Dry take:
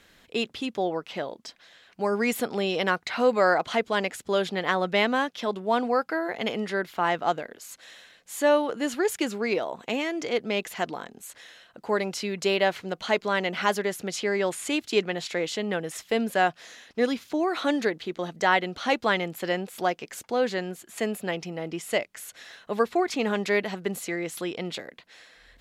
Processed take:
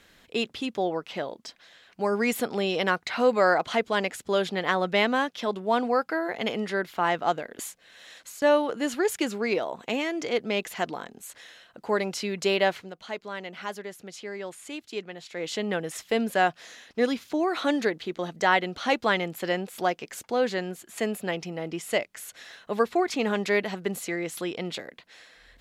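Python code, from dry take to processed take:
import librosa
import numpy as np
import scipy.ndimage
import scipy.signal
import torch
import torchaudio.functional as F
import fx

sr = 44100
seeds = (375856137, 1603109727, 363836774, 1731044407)

y = fx.edit(x, sr, fx.reverse_span(start_s=7.59, length_s=0.83),
    fx.fade_down_up(start_s=12.69, length_s=2.86, db=-10.5, fade_s=0.23), tone=tone)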